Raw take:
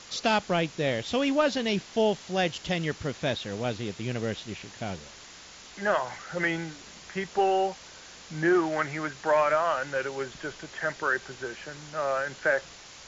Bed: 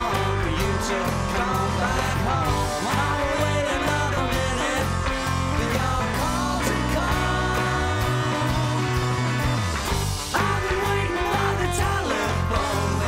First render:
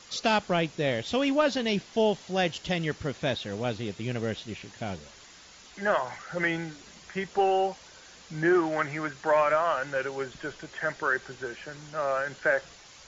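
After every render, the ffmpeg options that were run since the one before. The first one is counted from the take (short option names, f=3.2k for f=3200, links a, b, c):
-af "afftdn=nr=6:nf=-48"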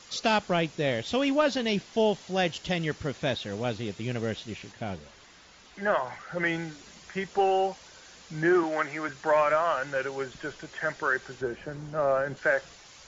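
-filter_complex "[0:a]asettb=1/sr,asplit=3[a][b][c];[a]atrim=end=4.724[d];[b]atrim=start=4.72:end=6.46,asetpts=PTS-STARTPTS,afade=t=in:d=0.004:c=qsin,afade=t=out:st=1.736:d=0.004:c=qsin,lowpass=f=3.5k:p=1[e];[c]atrim=start=6.456[f];[d][e]acrossfade=d=0.004:c1=hsin:c2=qsin[g];[g][f]acrossfade=d=0.004:c1=qsin:c2=hsin,asettb=1/sr,asplit=3[h][i][j];[h]atrim=end=8.634[k];[i]atrim=start=8.63:end=9.09,asetpts=PTS-STARTPTS,afade=t=in:d=0.004:c=qsin,afade=t=out:st=0.456:d=0.004:c=qsin,highpass=230[l];[j]atrim=start=9.086[m];[k][l]acrossfade=d=0.004:c1=hsin:c2=qsin[n];[n][m]acrossfade=d=0.004:c1=qsin:c2=hsin,asettb=1/sr,asplit=3[o][p][q];[o]atrim=end=11.414[r];[p]atrim=start=11.41:end=12.37,asetpts=PTS-STARTPTS,afade=t=in:d=0.004:c=qsin,afade=t=out:st=0.956:d=0.004:c=qsin,tiltshelf=f=1.1k:g=7.5[s];[q]atrim=start=12.366[t];[r][s]acrossfade=d=0.004:c1=hsin:c2=qsin[u];[u][t]acrossfade=d=0.004:c1=qsin:c2=hsin"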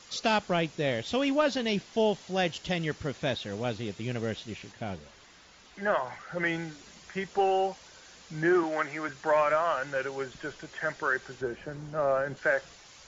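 -af "volume=-1.5dB"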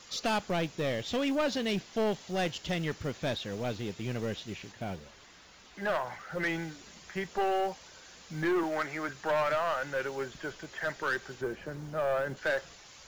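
-af "acrusher=bits=7:mode=log:mix=0:aa=0.000001,aeval=exprs='(tanh(15.8*val(0)+0.15)-tanh(0.15))/15.8':c=same"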